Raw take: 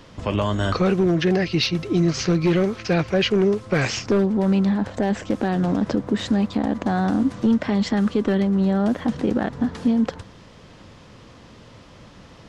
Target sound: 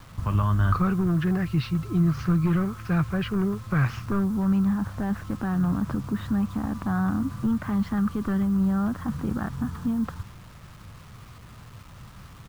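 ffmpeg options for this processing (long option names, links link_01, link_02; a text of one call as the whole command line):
ffmpeg -i in.wav -af "firequalizer=gain_entry='entry(130,0);entry(240,-12);entry(500,-21);entry(1200,-2);entry(2000,-16);entry(5500,-26)':delay=0.05:min_phase=1,acrusher=bits=8:mix=0:aa=0.000001,volume=4dB" out.wav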